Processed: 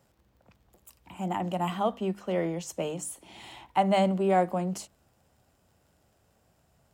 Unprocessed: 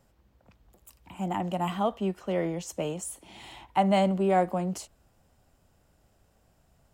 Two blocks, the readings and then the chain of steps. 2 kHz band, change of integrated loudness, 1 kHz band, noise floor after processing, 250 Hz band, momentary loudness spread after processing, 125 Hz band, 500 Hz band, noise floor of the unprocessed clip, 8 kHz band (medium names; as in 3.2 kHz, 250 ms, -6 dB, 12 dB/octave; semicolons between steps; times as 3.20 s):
0.0 dB, -0.5 dB, 0.0 dB, -69 dBFS, -1.0 dB, 15 LU, -1.0 dB, 0.0 dB, -67 dBFS, 0.0 dB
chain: crackle 36 per s -57 dBFS; high-pass 66 Hz; hum notches 50/100/150/200/250/300 Hz